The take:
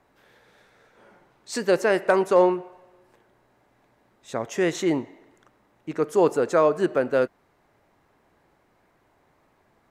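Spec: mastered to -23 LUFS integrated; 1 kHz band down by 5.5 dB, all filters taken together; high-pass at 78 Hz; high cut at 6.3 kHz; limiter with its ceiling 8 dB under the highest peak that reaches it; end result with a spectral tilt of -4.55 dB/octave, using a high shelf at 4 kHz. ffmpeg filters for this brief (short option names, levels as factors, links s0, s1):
-af "highpass=78,lowpass=6300,equalizer=f=1000:t=o:g=-7.5,highshelf=f=4000:g=6.5,volume=1.78,alimiter=limit=0.251:level=0:latency=1"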